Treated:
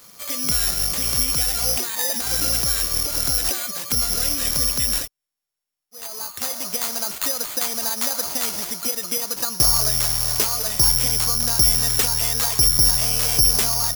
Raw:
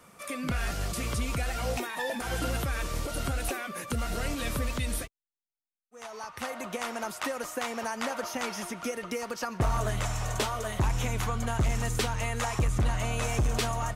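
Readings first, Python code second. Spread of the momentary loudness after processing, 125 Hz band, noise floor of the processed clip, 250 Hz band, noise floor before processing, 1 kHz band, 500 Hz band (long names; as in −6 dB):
9 LU, 0.0 dB, −84 dBFS, 0.0 dB, below −85 dBFS, +0.5 dB, 0.0 dB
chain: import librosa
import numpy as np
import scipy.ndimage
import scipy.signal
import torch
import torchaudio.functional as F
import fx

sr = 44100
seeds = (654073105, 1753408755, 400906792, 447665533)

y = (np.kron(x[::8], np.eye(8)[0]) * 8)[:len(x)]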